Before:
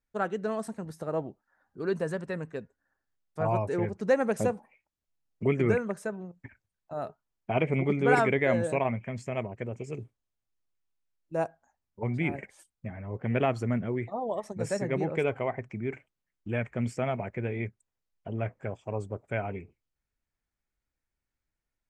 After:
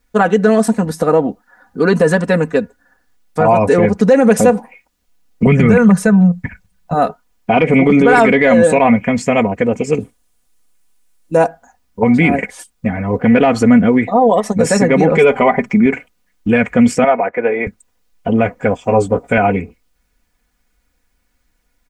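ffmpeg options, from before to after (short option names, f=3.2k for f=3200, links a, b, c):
-filter_complex "[0:a]asettb=1/sr,asplit=3[a][b][c];[a]atrim=end=5.464[d];[b]atrim=start=5.46:end=6.95,asetpts=PTS-STARTPTS,afade=t=in:d=0.004:c=qsin,afade=t=out:st=1.486:d=0.004:c=qsin,lowshelf=f=220:t=q:w=3:g=6.5[e];[c]atrim=start=6.946[f];[d][e]acrossfade=d=0.004:c1=hsin:c2=qsin[g];[g][f]acrossfade=d=0.004:c1=qsin:c2=hsin,asettb=1/sr,asplit=3[h][i][j];[h]atrim=end=10.004[k];[i]atrim=start=10:end=11.37,asetpts=PTS-STARTPTS,afade=t=in:d=0.004:c=qsin,afade=t=out:st=1.366:d=0.004:c=qsin,equalizer=f=9.5k:t=o:w=0.82:g=9[l];[j]atrim=start=11.366[m];[k][l]acrossfade=d=0.004:c1=hsin:c2=qsin[n];[n][m]acrossfade=d=0.004:c1=qsin:c2=hsin,asettb=1/sr,asplit=3[o][p][q];[o]atrim=end=15.114[r];[p]atrim=start=15.11:end=15.86,asetpts=PTS-STARTPTS,afade=t=in:d=0.004:c=qsin,afade=t=out:st=0.746:d=0.004:c=qsin,aecho=1:1:5:0.61,atrim=end_sample=33075[s];[q]atrim=start=15.856[t];[r][s]acrossfade=d=0.004:c1=hsin:c2=qsin[u];[u][t]acrossfade=d=0.004:c1=qsin:c2=hsin,asettb=1/sr,asplit=3[v][w][x];[v]atrim=end=17.044[y];[w]atrim=start=17.04:end=17.67,asetpts=PTS-STARTPTS,afade=t=in:d=0.004:c=qsin,afade=t=out:st=0.626:d=0.004:c=qsin,acrossover=split=350 2200:gain=0.0708 1 0.112[z][aa][ab];[z][aa][ab]amix=inputs=3:normalize=0[ac];[x]atrim=start=17.666[ad];[y][ac]acrossfade=d=0.004:c1=hsin:c2=qsin[ae];[ae][ad]acrossfade=d=0.004:c1=qsin:c2=hsin,asettb=1/sr,asplit=3[af][ag][ah];[af]atrim=end=18.854[ai];[ag]atrim=start=18.85:end=19.38,asetpts=PTS-STARTPTS,afade=t=in:d=0.004:c=qsin,afade=t=out:st=0.526:d=0.004:c=qsin,asplit=2[aj][ak];[ak]adelay=17,volume=-5dB[al];[aj][al]amix=inputs=2:normalize=0,atrim=end_sample=23373[am];[ah]atrim=start=19.376[an];[ai][am]acrossfade=d=0.004:c1=hsin:c2=qsin[ao];[ao][an]acrossfade=d=0.004:c1=qsin:c2=hsin,aecho=1:1:4.1:0.72,acontrast=80,alimiter=level_in=14.5dB:limit=-1dB:release=50:level=0:latency=1,volume=-1dB"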